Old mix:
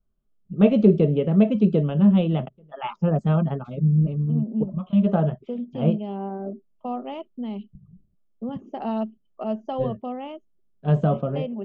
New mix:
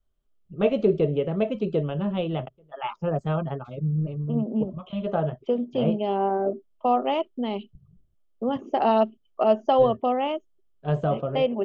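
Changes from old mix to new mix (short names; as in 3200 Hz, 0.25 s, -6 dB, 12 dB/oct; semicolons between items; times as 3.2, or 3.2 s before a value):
second voice +10.5 dB; master: add bell 200 Hz -12.5 dB 0.8 oct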